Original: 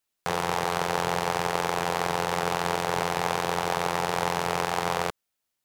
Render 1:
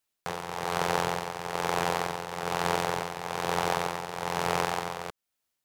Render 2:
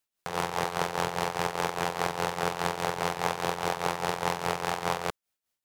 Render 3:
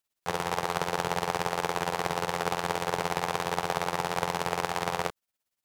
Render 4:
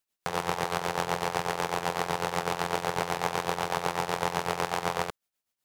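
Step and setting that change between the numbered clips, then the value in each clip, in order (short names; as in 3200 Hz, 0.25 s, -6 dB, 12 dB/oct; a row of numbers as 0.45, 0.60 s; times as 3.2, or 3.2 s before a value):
tremolo, rate: 1.1, 4.9, 17, 8 Hz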